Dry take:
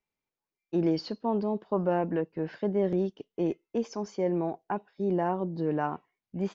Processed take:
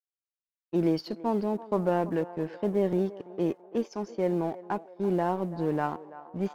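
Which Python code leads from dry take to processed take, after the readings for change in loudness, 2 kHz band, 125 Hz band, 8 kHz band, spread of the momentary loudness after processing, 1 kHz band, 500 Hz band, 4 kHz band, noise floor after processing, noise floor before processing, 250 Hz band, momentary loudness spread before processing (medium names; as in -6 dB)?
+0.5 dB, +1.0 dB, +0.5 dB, no reading, 7 LU, +1.0 dB, +0.5 dB, -1.0 dB, under -85 dBFS, under -85 dBFS, +0.5 dB, 7 LU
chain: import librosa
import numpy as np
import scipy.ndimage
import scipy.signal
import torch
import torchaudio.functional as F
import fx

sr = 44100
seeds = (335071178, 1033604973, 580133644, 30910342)

y = fx.law_mismatch(x, sr, coded='A')
y = fx.env_lowpass(y, sr, base_hz=2700.0, full_db=-27.5)
y = fx.echo_banded(y, sr, ms=334, feedback_pct=63, hz=830.0, wet_db=-15.0)
y = y * librosa.db_to_amplitude(1.5)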